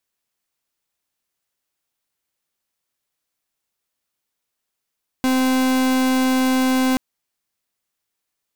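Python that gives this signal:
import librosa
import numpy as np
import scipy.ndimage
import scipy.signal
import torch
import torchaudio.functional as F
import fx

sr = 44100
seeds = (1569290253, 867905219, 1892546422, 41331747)

y = fx.pulse(sr, length_s=1.73, hz=259.0, level_db=-17.5, duty_pct=42)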